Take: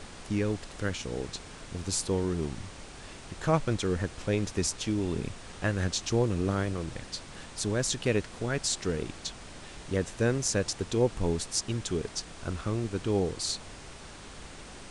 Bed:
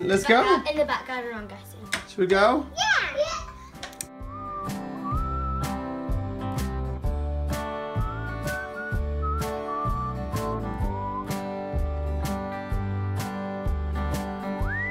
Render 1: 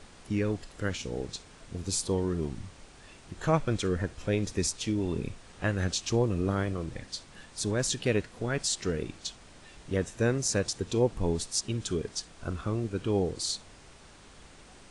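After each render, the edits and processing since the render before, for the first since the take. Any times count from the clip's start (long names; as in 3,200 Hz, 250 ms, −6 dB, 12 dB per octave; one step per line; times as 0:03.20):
noise reduction from a noise print 7 dB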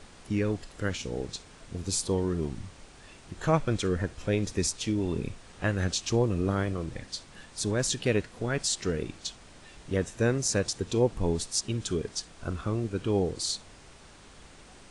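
level +1 dB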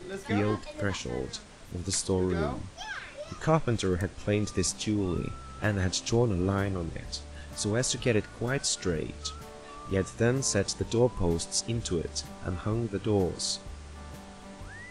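mix in bed −16.5 dB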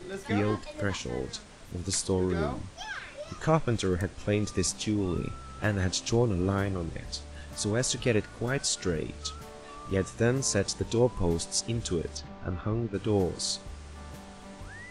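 0:12.17–0:12.94: high-frequency loss of the air 190 metres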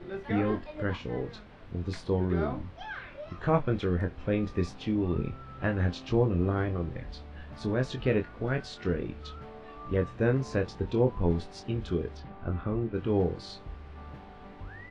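high-frequency loss of the air 360 metres
double-tracking delay 23 ms −6.5 dB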